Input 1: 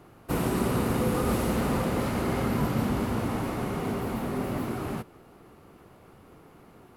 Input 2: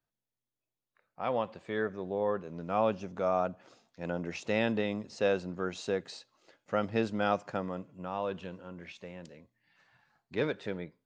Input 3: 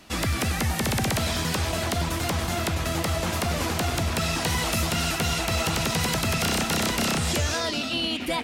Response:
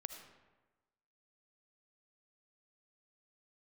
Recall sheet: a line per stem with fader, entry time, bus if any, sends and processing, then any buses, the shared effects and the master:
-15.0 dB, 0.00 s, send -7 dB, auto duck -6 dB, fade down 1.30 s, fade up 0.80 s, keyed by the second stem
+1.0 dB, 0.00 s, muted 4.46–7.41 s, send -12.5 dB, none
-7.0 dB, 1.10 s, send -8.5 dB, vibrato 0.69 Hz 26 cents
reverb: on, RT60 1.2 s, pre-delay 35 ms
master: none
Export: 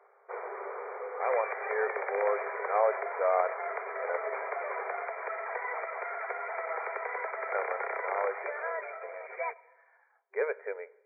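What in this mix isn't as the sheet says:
stem 1 -15.0 dB -> -6.5 dB; stem 3: missing vibrato 0.69 Hz 26 cents; master: extra brick-wall FIR band-pass 390–2400 Hz

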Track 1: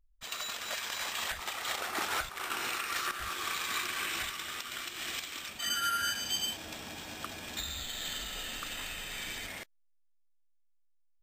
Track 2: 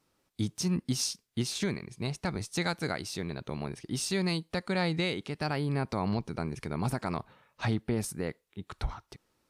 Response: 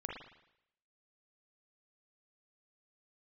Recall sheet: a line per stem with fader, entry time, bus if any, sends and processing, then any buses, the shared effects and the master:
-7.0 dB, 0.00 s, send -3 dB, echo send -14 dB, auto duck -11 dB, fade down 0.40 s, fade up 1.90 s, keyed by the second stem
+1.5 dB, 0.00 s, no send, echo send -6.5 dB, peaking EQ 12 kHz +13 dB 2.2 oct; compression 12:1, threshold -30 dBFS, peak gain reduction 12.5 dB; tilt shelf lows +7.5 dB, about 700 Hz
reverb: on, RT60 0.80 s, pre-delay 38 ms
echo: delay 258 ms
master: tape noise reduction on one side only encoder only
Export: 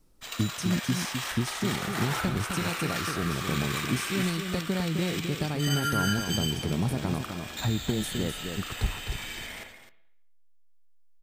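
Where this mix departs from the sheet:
stem 1 -7.0 dB -> +2.5 dB; master: missing tape noise reduction on one side only encoder only

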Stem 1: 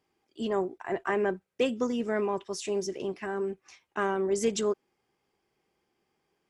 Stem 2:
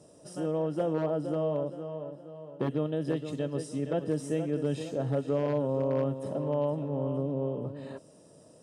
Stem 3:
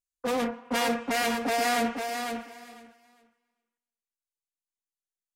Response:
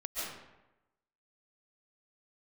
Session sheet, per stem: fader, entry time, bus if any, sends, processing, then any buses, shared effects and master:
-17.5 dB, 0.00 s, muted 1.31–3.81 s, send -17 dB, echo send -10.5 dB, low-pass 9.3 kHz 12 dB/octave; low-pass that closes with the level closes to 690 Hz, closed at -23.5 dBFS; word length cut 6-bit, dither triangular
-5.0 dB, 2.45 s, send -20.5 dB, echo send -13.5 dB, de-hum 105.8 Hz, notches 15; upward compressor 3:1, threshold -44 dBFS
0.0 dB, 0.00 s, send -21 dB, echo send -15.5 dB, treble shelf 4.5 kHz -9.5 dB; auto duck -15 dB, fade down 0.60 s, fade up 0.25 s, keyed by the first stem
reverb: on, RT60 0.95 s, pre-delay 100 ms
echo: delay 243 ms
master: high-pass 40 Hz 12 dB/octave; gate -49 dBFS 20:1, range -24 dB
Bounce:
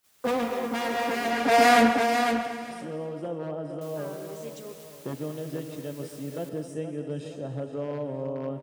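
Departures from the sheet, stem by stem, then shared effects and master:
stem 1: missing low-pass that closes with the level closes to 690 Hz, closed at -23.5 dBFS; stem 3 0.0 dB -> +7.5 dB; reverb return +7.5 dB

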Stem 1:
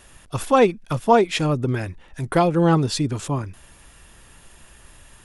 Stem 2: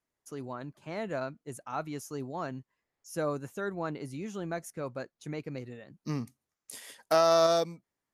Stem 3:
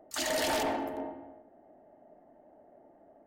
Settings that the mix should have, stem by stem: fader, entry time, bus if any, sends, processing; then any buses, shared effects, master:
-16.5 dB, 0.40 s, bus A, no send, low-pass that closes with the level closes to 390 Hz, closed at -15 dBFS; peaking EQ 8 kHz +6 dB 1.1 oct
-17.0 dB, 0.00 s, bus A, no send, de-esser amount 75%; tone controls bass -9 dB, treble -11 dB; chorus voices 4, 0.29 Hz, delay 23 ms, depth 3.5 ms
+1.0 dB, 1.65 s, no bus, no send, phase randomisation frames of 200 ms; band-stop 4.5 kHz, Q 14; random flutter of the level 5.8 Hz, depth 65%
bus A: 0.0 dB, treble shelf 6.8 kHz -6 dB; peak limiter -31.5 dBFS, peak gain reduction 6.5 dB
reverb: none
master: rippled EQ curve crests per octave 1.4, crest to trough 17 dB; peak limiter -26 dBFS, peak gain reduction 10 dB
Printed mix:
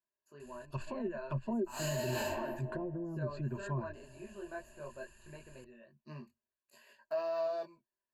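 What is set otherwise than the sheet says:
stem 2 -17.0 dB -> -8.5 dB; stem 3 +1.0 dB -> -6.0 dB

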